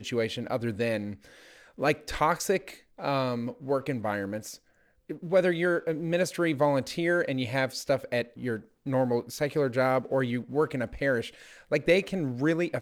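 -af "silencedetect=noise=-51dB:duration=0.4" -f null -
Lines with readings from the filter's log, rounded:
silence_start: 4.57
silence_end: 5.09 | silence_duration: 0.52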